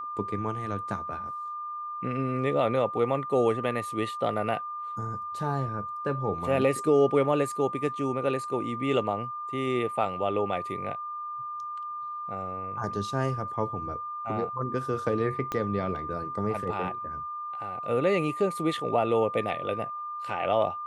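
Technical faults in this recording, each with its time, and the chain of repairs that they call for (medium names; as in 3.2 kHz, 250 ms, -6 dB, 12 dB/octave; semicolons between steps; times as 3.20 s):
whine 1.2 kHz -33 dBFS
15.52 s: pop -17 dBFS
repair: de-click; band-stop 1.2 kHz, Q 30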